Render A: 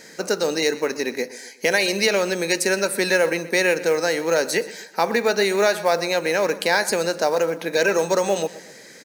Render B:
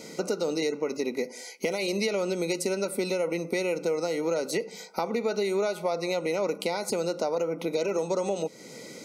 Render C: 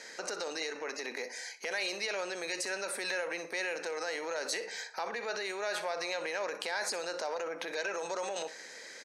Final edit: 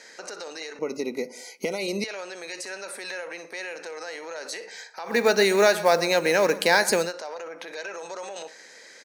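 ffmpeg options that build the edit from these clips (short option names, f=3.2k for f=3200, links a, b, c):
-filter_complex "[2:a]asplit=3[a][b][c];[a]atrim=end=0.792[d];[1:a]atrim=start=0.788:end=2.042[e];[b]atrim=start=2.038:end=5.2[f];[0:a]atrim=start=5.04:end=7.14[g];[c]atrim=start=6.98[h];[d][e]acrossfade=d=0.004:c1=hsin:c2=hsin[i];[i][f]acrossfade=d=0.004:c1=hsin:c2=hsin[j];[j][g]acrossfade=d=0.16:c1=tri:c2=tri[k];[k][h]acrossfade=d=0.16:c1=tri:c2=tri"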